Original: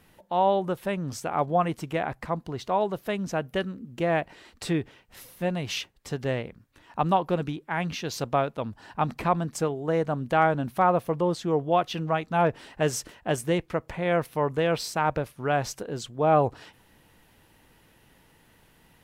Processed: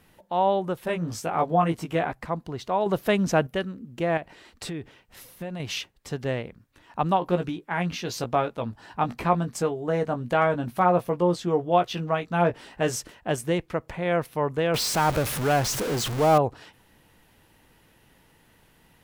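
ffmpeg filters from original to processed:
ffmpeg -i in.wav -filter_complex "[0:a]asettb=1/sr,asplit=3[link_01][link_02][link_03];[link_01]atrim=end=0.854[link_04];[link_02]atrim=start=0.85:end=2.12,asetpts=PTS-STARTPTS,afade=type=in:duration=0.004:curve=qsin,afade=type=out:start_time=1.266:duration=0.004:curve=qsin,asplit=2[link_05][link_06];[link_06]adelay=18,volume=-2.5dB[link_07];[link_05][link_07]amix=inputs=2:normalize=0,atrim=end_sample=56007[link_08];[link_03]atrim=start=2.116[link_09];[link_04][link_08]acrossfade=duration=0.004:curve1=hsin:curve2=qsin[link_10];[link_10][link_09]acrossfade=duration=0.004:curve1=qsin:curve2=hsin,asettb=1/sr,asplit=3[link_11][link_12][link_13];[link_11]atrim=end=2.864[link_14];[link_12]atrim=start=2.86:end=3.47,asetpts=PTS-STARTPTS,afade=type=in:duration=0.004:curve=qsin,afade=type=out:start_time=0.606:duration=0.004:curve=qsin,acontrast=85[link_15];[link_13]atrim=start=3.466[link_16];[link_14][link_15]acrossfade=duration=0.004:curve1=hsin:curve2=qsin[link_17];[link_17][link_16]acrossfade=duration=0.004:curve1=qsin:curve2=hsin,asettb=1/sr,asplit=3[link_18][link_19][link_20];[link_18]atrim=end=4.174[link_21];[link_19]atrim=start=4.17:end=5.6,asetpts=PTS-STARTPTS,afade=type=in:duration=0.004:curve=qsin,afade=type=out:start_time=1.426:duration=0.004:curve=qsin,acompressor=threshold=-30dB:ratio=6:attack=3.2:release=140:knee=1:detection=peak[link_22];[link_20]atrim=start=5.596[link_23];[link_21][link_22]acrossfade=duration=0.004:curve1=hsin:curve2=qsin[link_24];[link_24][link_23]acrossfade=duration=0.004:curve1=qsin:curve2=hsin,asettb=1/sr,asplit=3[link_25][link_26][link_27];[link_25]atrim=end=7.204[link_28];[link_26]atrim=start=7.2:end=12.96,asetpts=PTS-STARTPTS,afade=type=in:duration=0.004:curve=qsin,afade=type=out:start_time=5.756:duration=0.004:curve=qsin,asplit=2[link_29][link_30];[link_30]adelay=17,volume=-6.5dB[link_31];[link_29][link_31]amix=inputs=2:normalize=0,atrim=end_sample=254016[link_32];[link_27]atrim=start=12.956[link_33];[link_28][link_32]acrossfade=duration=0.004:curve1=hsin:curve2=qsin[link_34];[link_34][link_33]acrossfade=duration=0.004:curve1=qsin:curve2=hsin,asettb=1/sr,asplit=3[link_35][link_36][link_37];[link_35]atrim=end=14.744[link_38];[link_36]atrim=start=14.74:end=16.38,asetpts=PTS-STARTPTS,afade=type=in:duration=0.004:curve=qsin,afade=type=out:start_time=1.636:duration=0.004:curve=qsin,aeval=exprs='val(0)+0.5*0.0596*sgn(val(0))':channel_layout=same[link_39];[link_37]atrim=start=16.376[link_40];[link_38][link_39]acrossfade=duration=0.004:curve1=hsin:curve2=qsin[link_41];[link_41][link_40]acrossfade=duration=0.004:curve1=qsin:curve2=hsin" out.wav

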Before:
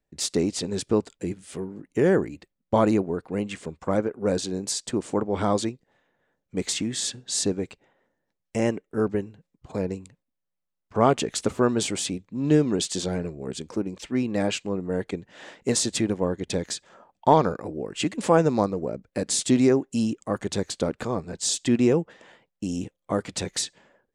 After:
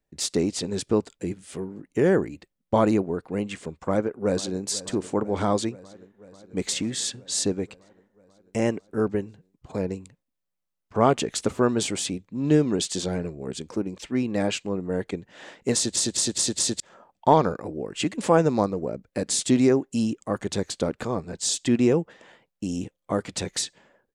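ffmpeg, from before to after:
ffmpeg -i in.wav -filter_complex "[0:a]asplit=2[link_01][link_02];[link_02]afade=type=in:start_time=3.76:duration=0.01,afade=type=out:start_time=4.65:duration=0.01,aecho=0:1:490|980|1470|1960|2450|2940|3430|3920|4410|4900:0.133352|0.100014|0.0750106|0.0562579|0.0421935|0.0316451|0.0237338|0.0178004|0.0133503|0.0100127[link_03];[link_01][link_03]amix=inputs=2:normalize=0,asplit=6[link_04][link_05][link_06][link_07][link_08][link_09];[link_04]atrim=end=15.962[link_10];[link_05]atrim=start=15.748:end=15.962[link_11];[link_06]atrim=start=15.748:end=15.962[link_12];[link_07]atrim=start=15.748:end=15.962[link_13];[link_08]atrim=start=15.748:end=15.962[link_14];[link_09]atrim=start=16.798[link_15];[link_10][link_11]acrossfade=duration=0.004:curve1=hsin:curve2=hsin[link_16];[link_16][link_12]acrossfade=duration=0.004:curve1=hsin:curve2=hsin[link_17];[link_17][link_13]acrossfade=duration=0.004:curve1=hsin:curve2=hsin[link_18];[link_18][link_14]acrossfade=duration=0.004:curve1=hsin:curve2=hsin[link_19];[link_19][link_15]acrossfade=duration=0.004:curve1=hsin:curve2=hsin" out.wav

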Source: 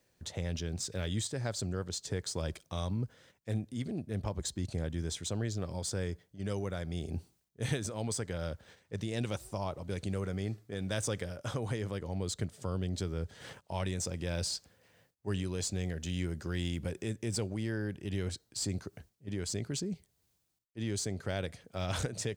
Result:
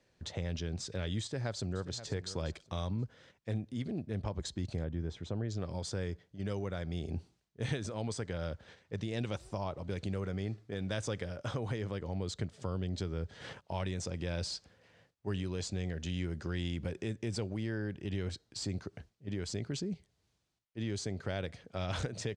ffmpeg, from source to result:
ffmpeg -i in.wav -filter_complex "[0:a]asplit=2[link_01][link_02];[link_02]afade=type=in:start_time=1.22:duration=0.01,afade=type=out:start_time=1.98:duration=0.01,aecho=0:1:530|1060:0.188365|0.0282547[link_03];[link_01][link_03]amix=inputs=2:normalize=0,asplit=3[link_04][link_05][link_06];[link_04]afade=type=out:start_time=4.83:duration=0.02[link_07];[link_05]lowpass=frequency=1100:poles=1,afade=type=in:start_time=4.83:duration=0.02,afade=type=out:start_time=5.49:duration=0.02[link_08];[link_06]afade=type=in:start_time=5.49:duration=0.02[link_09];[link_07][link_08][link_09]amix=inputs=3:normalize=0,acompressor=threshold=-39dB:ratio=1.5,lowpass=5300,volume=2dB" out.wav

